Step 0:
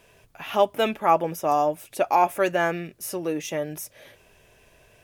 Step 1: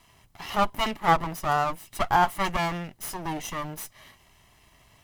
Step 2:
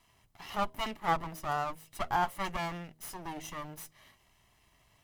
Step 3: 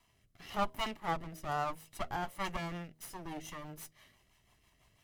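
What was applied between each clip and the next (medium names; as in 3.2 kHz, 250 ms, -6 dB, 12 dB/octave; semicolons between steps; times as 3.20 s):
comb filter that takes the minimum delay 1 ms
de-hum 79.19 Hz, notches 8; trim -8.5 dB
rotary cabinet horn 1 Hz, later 6 Hz, at 2.17 s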